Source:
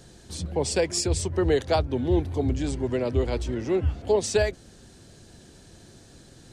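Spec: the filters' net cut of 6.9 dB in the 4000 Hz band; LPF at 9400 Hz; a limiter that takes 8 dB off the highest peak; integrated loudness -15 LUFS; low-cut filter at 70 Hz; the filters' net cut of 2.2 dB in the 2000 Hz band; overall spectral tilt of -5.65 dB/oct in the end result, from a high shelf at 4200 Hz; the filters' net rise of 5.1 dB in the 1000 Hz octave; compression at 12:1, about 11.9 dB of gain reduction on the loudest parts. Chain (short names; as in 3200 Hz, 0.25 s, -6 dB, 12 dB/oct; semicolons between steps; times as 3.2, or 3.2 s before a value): HPF 70 Hz; LPF 9400 Hz; bell 1000 Hz +8 dB; bell 2000 Hz -3.5 dB; bell 4000 Hz -5.5 dB; high shelf 4200 Hz -4.5 dB; compressor 12:1, threshold -28 dBFS; gain +21 dB; limiter -5.5 dBFS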